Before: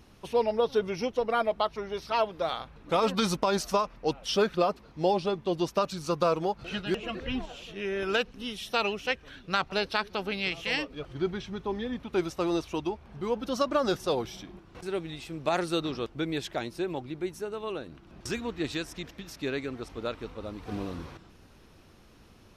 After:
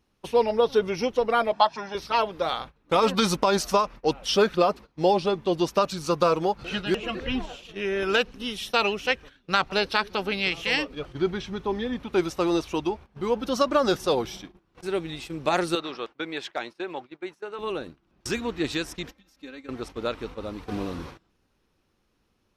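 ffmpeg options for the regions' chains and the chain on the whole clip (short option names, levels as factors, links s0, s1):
-filter_complex "[0:a]asettb=1/sr,asplit=3[s0][s1][s2];[s0]atrim=end=1.534[s3];[s1]atrim=start=1.53:end=1.95,asetpts=PTS-STARTPTS,afade=t=in:d=0.004:c=qsin,afade=t=out:st=0.416:d=0.004:c=qsin,highpass=220,equalizer=f=930:t=q:w=4:g=4,equalizer=f=1300:t=q:w=4:g=4,equalizer=f=5100:t=q:w=4:g=6,lowpass=f=8300:w=0.5412,lowpass=f=8300:w=1.3066,aecho=1:1:1.2:0.66,atrim=end_sample=18522[s4];[s2]atrim=start=1.946[s5];[s3][s4]acrossfade=d=0.004:c1=hsin:c2=qsin[s6];[s6][s5]acrossfade=d=0.004:c1=qsin:c2=hsin,asettb=1/sr,asplit=3[s7][s8][s9];[s7]atrim=end=15.754[s10];[s8]atrim=start=15.75:end=17.59,asetpts=PTS-STARTPTS,afade=t=in:d=0.004:c=qsin,afade=t=out:st=1.836:d=0.004:c=qsin,bandpass=f=1500:t=q:w=0.52,asoftclip=type=hard:threshold=0.0841[s11];[s9]atrim=start=17.586[s12];[s10][s11]acrossfade=d=0.004:c1=hsin:c2=qsin[s13];[s13][s12]acrossfade=d=0.004:c1=qsin:c2=hsin,asettb=1/sr,asplit=3[s14][s15][s16];[s14]atrim=end=19.084[s17];[s15]atrim=start=19.08:end=19.69,asetpts=PTS-STARTPTS,afade=t=in:d=0.004:c=qsin,afade=t=out:st=0.606:d=0.004:c=qsin,aecho=1:1:3.8:0.73,atrim=end_sample=26901,acompressor=threshold=0.00562:ratio=3:attack=3.2:release=140:knee=1:detection=peak[s18];[s16]atrim=start=19.686[s19];[s17][s18]acrossfade=d=0.004:c1=hsin:c2=qsin[s20];[s20][s19]acrossfade=d=0.004:c1=qsin:c2=hsin,bandreject=f=660:w=16,agate=range=0.112:threshold=0.00708:ratio=16:detection=peak,equalizer=f=100:w=0.75:g=-3.5,volume=1.78"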